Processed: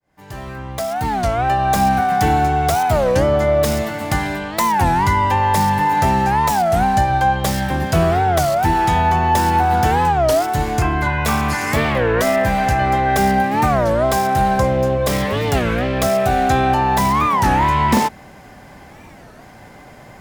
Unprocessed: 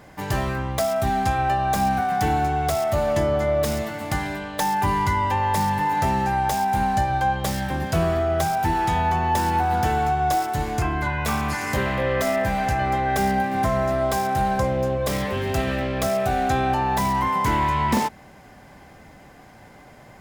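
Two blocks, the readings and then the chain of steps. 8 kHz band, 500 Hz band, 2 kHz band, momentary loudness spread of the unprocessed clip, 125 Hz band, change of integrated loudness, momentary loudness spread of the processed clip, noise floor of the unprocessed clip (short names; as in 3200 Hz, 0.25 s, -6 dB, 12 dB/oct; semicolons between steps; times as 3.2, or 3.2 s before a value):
+5.5 dB, +6.0 dB, +5.5 dB, 4 LU, +6.0 dB, +6.0 dB, 4 LU, -47 dBFS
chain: opening faded in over 1.77 s; record warp 33 1/3 rpm, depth 250 cents; gain +6 dB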